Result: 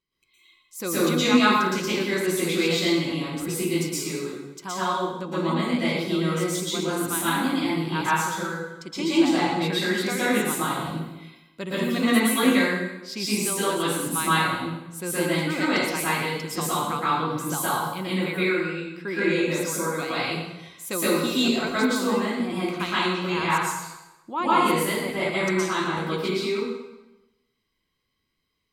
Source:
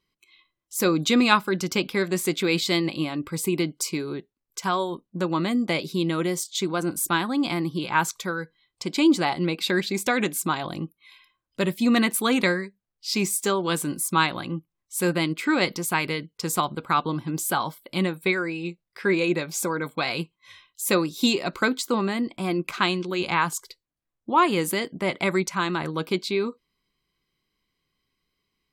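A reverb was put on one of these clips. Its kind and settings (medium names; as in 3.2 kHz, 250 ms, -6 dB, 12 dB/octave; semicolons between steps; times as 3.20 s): plate-style reverb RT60 1 s, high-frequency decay 0.85×, pre-delay 105 ms, DRR -10 dB; trim -9.5 dB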